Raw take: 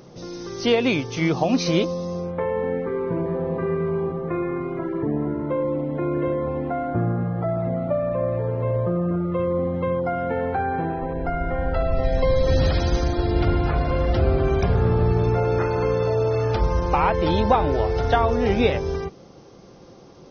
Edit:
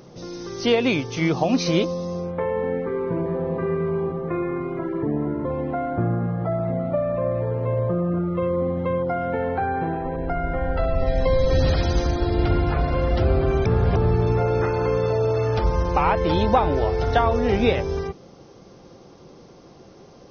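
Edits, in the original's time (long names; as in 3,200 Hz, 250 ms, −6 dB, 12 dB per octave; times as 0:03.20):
0:05.45–0:06.42: remove
0:14.63–0:14.93: reverse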